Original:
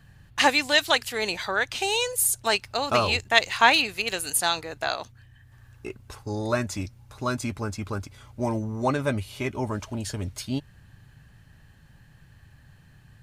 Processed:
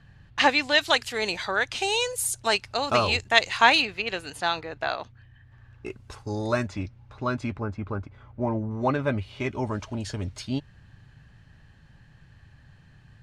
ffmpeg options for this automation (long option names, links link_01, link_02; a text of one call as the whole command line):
ffmpeg -i in.wav -af "asetnsamples=nb_out_samples=441:pad=0,asendcmd='0.81 lowpass f 8400;3.85 lowpass f 3300;5.86 lowpass f 7900;6.67 lowpass f 3100;7.57 lowpass f 1700;8.71 lowpass f 3200;9.4 lowpass f 5800',lowpass=4700" out.wav